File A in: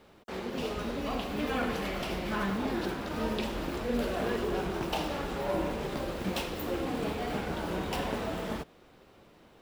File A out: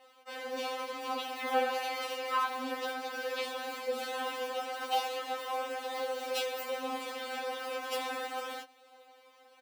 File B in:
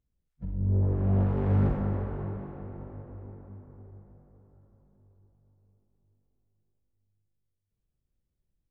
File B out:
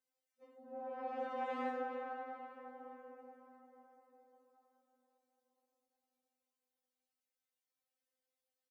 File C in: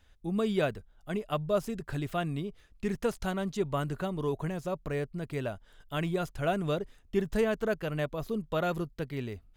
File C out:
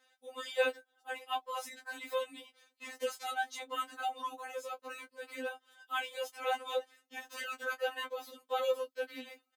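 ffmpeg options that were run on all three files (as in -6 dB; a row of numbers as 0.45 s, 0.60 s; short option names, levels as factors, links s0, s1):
-filter_complex "[0:a]highpass=f=390:w=0.5412,highpass=f=390:w=1.3066,asplit=2[s0][s1];[s1]adelay=18,volume=0.237[s2];[s0][s2]amix=inputs=2:normalize=0,afftfilt=real='re*3.46*eq(mod(b,12),0)':imag='im*3.46*eq(mod(b,12),0)':win_size=2048:overlap=0.75,volume=1.41"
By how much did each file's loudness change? -2.0 LU, -15.0 LU, -5.5 LU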